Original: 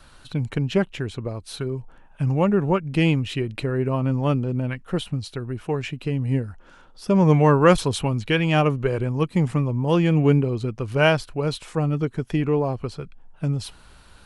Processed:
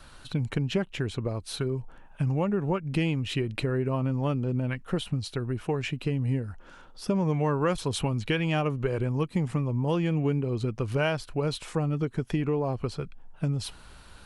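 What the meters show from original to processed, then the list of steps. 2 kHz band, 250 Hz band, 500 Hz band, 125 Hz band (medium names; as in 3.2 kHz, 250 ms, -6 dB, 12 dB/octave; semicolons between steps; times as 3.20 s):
-7.0 dB, -6.5 dB, -7.0 dB, -5.5 dB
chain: compression 4:1, threshold -24 dBFS, peak gain reduction 12.5 dB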